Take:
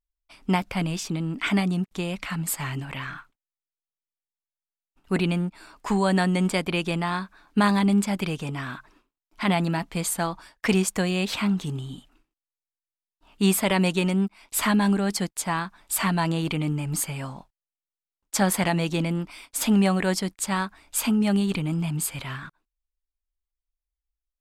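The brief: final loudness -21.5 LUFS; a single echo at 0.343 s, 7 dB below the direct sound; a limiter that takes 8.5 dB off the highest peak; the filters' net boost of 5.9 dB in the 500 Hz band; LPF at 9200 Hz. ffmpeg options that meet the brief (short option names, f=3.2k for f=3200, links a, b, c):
-af "lowpass=9.2k,equalizer=f=500:t=o:g=8,alimiter=limit=-14.5dB:level=0:latency=1,aecho=1:1:343:0.447,volume=3.5dB"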